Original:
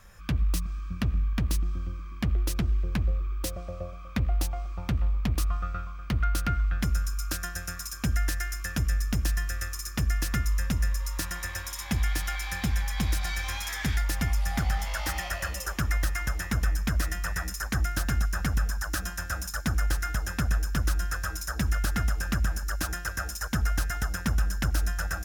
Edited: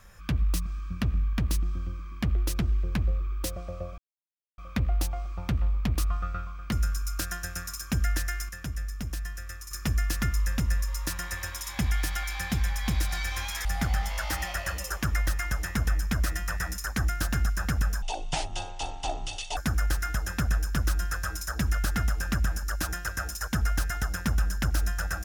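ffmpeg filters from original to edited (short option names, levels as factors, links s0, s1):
-filter_complex "[0:a]asplit=8[s0][s1][s2][s3][s4][s5][s6][s7];[s0]atrim=end=3.98,asetpts=PTS-STARTPTS,afade=t=out:st=3.976:d=0.004:c=hsin,apad=pad_dur=0.6[s8];[s1]atrim=start=3.98:end=6.122,asetpts=PTS-STARTPTS,afade=t=in:d=0.004:c=hsin[s9];[s2]atrim=start=6.838:end=8.612[s10];[s3]atrim=start=8.608:end=9.832,asetpts=PTS-STARTPTS,volume=0.447[s11];[s4]atrim=start=9.828:end=13.772[s12];[s5]atrim=start=14.408:end=18.784[s13];[s6]atrim=start=18.78:end=19.57,asetpts=PTS-STARTPTS,asetrate=22491,aresample=44100[s14];[s7]atrim=start=19.566[s15];[s8][s9]concat=n=2:v=0:a=1[s16];[s16][s10]acrossfade=d=0.004:c1=hsin:c2=hsin[s17];[s17][s11]acrossfade=d=0.004:c1=hsin:c2=hsin[s18];[s18][s12]acrossfade=d=0.004:c1=hsin:c2=hsin[s19];[s19][s13]acrossfade=d=0.004:c1=hsin:c2=hsin[s20];[s20][s14]acrossfade=d=0.004:c1=hsin:c2=hsin[s21];[s21][s15]acrossfade=d=0.004:c1=hsin:c2=hsin"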